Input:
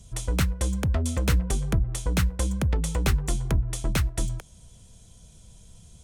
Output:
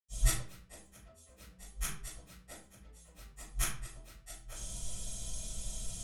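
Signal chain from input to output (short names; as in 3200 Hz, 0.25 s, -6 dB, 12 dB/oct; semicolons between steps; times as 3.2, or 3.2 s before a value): flipped gate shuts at -21 dBFS, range -37 dB; high shelf 3800 Hz +8.5 dB; reverb RT60 0.45 s, pre-delay 85 ms, DRR -60 dB; gain +16 dB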